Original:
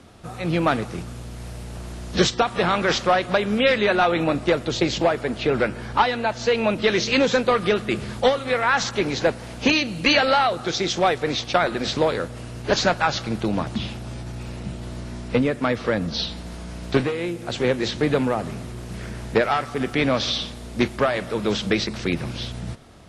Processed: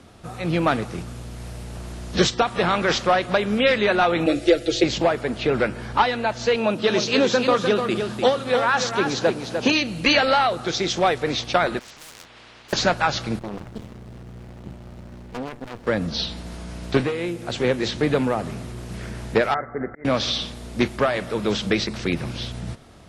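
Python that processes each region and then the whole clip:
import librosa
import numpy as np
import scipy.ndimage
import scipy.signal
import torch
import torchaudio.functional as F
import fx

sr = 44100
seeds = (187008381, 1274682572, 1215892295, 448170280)

y = fx.chain(x, sr, fx.fixed_phaser(hz=410.0, stages=4),
    fx.comb(ms=6.0, depth=0.91),
    fx.band_squash(depth_pct=40), at=(4.26, 4.84))
y = fx.chain(y, sr, fx.highpass(hz=130.0, slope=12),
    fx.peak_eq(hz=2100.0, db=-7.5, octaves=0.32),
    fx.echo_single(ms=300, db=-6.5), at=(6.56, 9.75))
y = fx.chain(y, sr, fx.lowpass(hz=2000.0, slope=12),
    fx.clip_hard(threshold_db=-24.0),
    fx.spectral_comp(ratio=10.0), at=(11.79, 12.73))
y = fx.chain(y, sr, fx.high_shelf(hz=9200.0, db=-6.5),
    fx.tube_stage(drive_db=25.0, bias=0.7),
    fx.running_max(window=33), at=(13.39, 15.87))
y = fx.chain(y, sr, fx.auto_swell(attack_ms=523.0),
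    fx.cheby_ripple(hz=2100.0, ripple_db=6), at=(19.54, 20.05))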